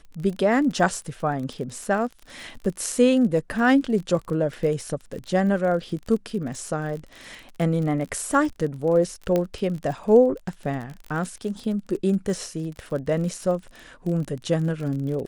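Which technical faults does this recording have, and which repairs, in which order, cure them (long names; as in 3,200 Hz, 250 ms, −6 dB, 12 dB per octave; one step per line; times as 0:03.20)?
surface crackle 36 per second −31 dBFS
0:09.36: click −11 dBFS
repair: click removal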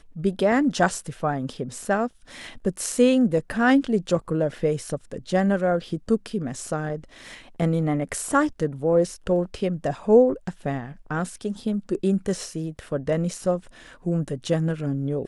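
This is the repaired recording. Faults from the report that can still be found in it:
0:09.36: click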